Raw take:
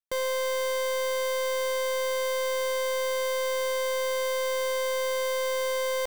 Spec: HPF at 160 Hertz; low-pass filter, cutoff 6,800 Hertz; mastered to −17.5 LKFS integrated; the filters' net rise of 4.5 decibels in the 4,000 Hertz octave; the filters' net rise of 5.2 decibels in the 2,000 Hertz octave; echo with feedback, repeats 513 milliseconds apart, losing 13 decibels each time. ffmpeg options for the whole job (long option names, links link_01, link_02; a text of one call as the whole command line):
ffmpeg -i in.wav -af "highpass=160,lowpass=6800,equalizer=frequency=2000:width_type=o:gain=5,equalizer=frequency=4000:width_type=o:gain=4.5,aecho=1:1:513|1026|1539:0.224|0.0493|0.0108,volume=8.5dB" out.wav